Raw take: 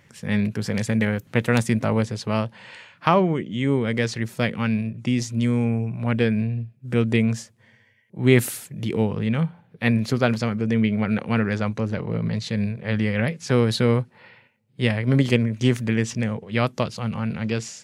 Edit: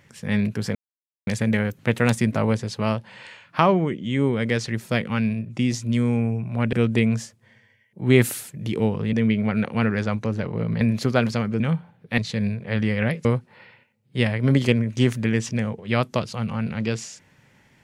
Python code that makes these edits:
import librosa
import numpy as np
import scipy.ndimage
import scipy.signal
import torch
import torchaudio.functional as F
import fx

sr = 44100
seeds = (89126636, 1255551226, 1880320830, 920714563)

y = fx.edit(x, sr, fx.insert_silence(at_s=0.75, length_s=0.52),
    fx.cut(start_s=6.21, length_s=0.69),
    fx.swap(start_s=9.3, length_s=0.58, other_s=10.67, other_length_s=1.68),
    fx.cut(start_s=13.42, length_s=0.47), tone=tone)